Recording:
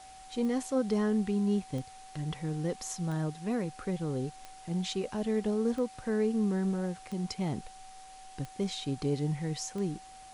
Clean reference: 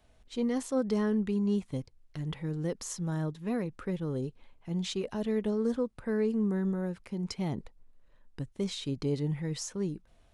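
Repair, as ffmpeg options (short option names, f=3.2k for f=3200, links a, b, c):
-af "adeclick=t=4,bandreject=f=760:w=30,afwtdn=0.002"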